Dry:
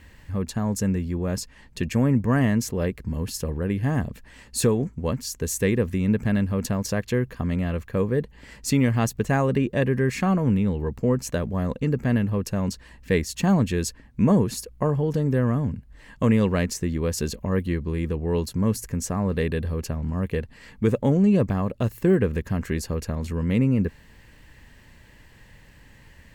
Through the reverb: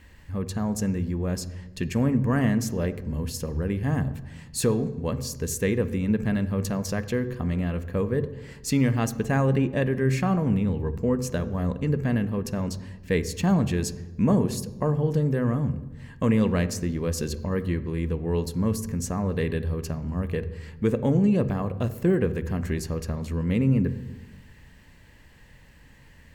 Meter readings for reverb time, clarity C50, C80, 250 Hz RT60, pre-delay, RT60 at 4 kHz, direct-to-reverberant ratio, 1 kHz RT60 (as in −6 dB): 1.1 s, 14.5 dB, 16.5 dB, 1.4 s, 3 ms, 0.80 s, 12.0 dB, 0.95 s